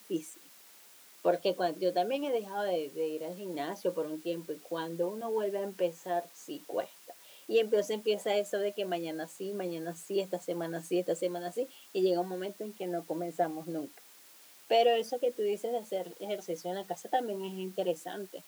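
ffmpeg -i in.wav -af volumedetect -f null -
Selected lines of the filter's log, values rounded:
mean_volume: -33.6 dB
max_volume: -15.4 dB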